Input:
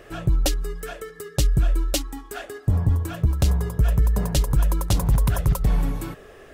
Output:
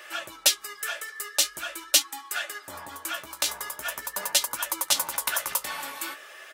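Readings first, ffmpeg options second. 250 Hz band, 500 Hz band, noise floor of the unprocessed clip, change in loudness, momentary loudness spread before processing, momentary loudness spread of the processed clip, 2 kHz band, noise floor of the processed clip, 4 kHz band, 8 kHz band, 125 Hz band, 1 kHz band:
-19.5 dB, -7.5 dB, -46 dBFS, -3.5 dB, 14 LU, 13 LU, +7.0 dB, -48 dBFS, +8.0 dB, +7.5 dB, -39.0 dB, +1.0 dB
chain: -filter_complex "[0:a]highpass=1300,aecho=1:1:3.4:0.54,asplit=2[s0][s1];[s1]asoftclip=type=tanh:threshold=0.0562,volume=0.316[s2];[s0][s2]amix=inputs=2:normalize=0,flanger=delay=8.2:depth=9:regen=45:speed=0.44:shape=sinusoidal,volume=2.82"

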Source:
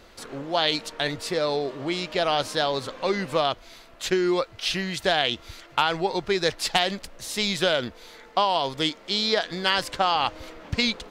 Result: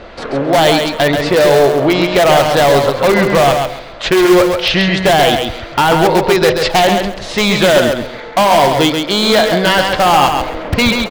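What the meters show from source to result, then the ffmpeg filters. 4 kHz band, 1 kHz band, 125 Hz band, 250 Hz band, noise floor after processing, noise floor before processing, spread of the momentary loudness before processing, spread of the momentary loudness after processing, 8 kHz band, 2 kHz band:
+9.5 dB, +14.0 dB, +17.0 dB, +16.0 dB, -29 dBFS, -50 dBFS, 7 LU, 7 LU, +13.0 dB, +13.5 dB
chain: -filter_complex "[0:a]lowpass=3100,equalizer=f=610:w=1.8:g=5.5,bandreject=f=126.7:t=h:w=4,bandreject=f=253.4:t=h:w=4,bandreject=f=380.1:t=h:w=4,bandreject=f=506.8:t=h:w=4,bandreject=f=633.5:t=h:w=4,bandreject=f=760.2:t=h:w=4,bandreject=f=886.9:t=h:w=4,bandreject=f=1013.6:t=h:w=4,asplit=2[s0][s1];[s1]aeval=exprs='(mod(7.94*val(0)+1,2)-1)/7.94':c=same,volume=0.316[s2];[s0][s2]amix=inputs=2:normalize=0,apsyclip=10,asplit=2[s3][s4];[s4]aecho=0:1:134|268|402:0.562|0.124|0.0272[s5];[s3][s5]amix=inputs=2:normalize=0,volume=0.501"

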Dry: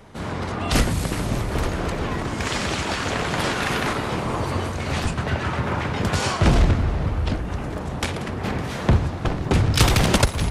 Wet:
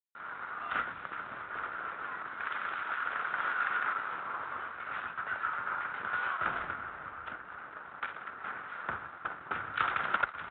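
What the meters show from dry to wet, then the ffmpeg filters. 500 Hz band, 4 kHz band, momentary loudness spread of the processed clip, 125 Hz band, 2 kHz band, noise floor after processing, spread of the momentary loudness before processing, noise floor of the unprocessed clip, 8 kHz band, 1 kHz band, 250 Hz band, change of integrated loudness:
-21.5 dB, -21.5 dB, 11 LU, -36.0 dB, -5.5 dB, -48 dBFS, 9 LU, -30 dBFS, under -40 dB, -7.0 dB, -29.0 dB, -12.5 dB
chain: -af "aresample=8000,aeval=exprs='sgn(val(0))*max(abs(val(0))-0.0158,0)':c=same,aresample=44100,bandpass=f=1400:t=q:w=5.8:csg=0,volume=1.33"

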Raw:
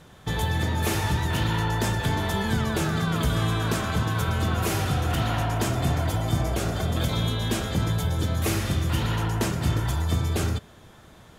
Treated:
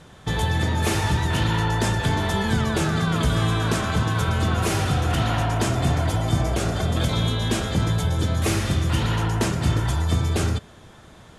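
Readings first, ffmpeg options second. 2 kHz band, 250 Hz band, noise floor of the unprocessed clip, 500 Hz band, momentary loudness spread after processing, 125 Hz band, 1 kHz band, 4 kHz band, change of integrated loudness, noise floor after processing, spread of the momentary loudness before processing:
+3.0 dB, +3.0 dB, -50 dBFS, +3.0 dB, 1 LU, +3.0 dB, +3.0 dB, +3.0 dB, +3.0 dB, -47 dBFS, 1 LU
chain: -af "lowpass=f=11000:w=0.5412,lowpass=f=11000:w=1.3066,volume=1.41"

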